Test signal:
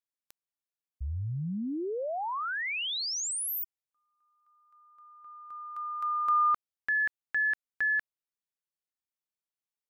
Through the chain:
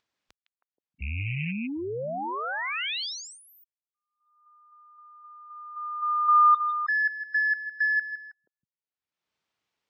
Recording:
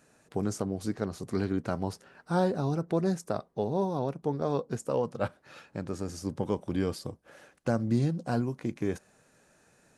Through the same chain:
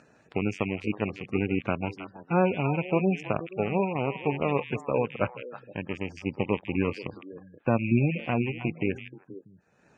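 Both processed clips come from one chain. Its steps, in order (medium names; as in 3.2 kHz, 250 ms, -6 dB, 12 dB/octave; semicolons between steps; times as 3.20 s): rattle on loud lows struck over -32 dBFS, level -24 dBFS; repeats whose band climbs or falls 159 ms, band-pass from 2.7 kHz, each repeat -1.4 oct, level -2.5 dB; power-law waveshaper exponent 1.4; high-pass 51 Hz 12 dB/octave; treble shelf 6.4 kHz +6 dB; spectral gate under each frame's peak -20 dB strong; upward compressor, threshold -49 dBFS; distance through air 170 m; trim +6.5 dB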